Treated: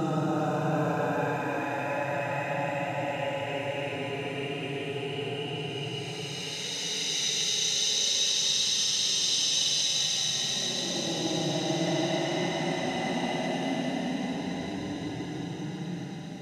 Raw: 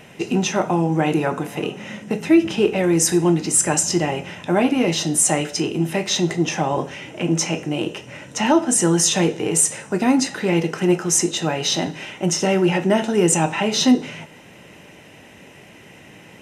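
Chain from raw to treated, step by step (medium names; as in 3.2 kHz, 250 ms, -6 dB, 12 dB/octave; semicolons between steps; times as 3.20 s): Paulstretch 36×, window 0.05 s, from 11.46 s; feedback echo behind a high-pass 391 ms, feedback 67%, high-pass 1.8 kHz, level -6 dB; trim -8.5 dB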